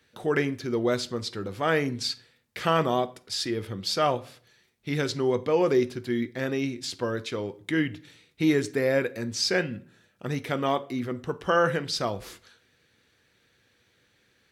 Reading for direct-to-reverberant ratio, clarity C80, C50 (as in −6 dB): 11.5 dB, 23.5 dB, 19.5 dB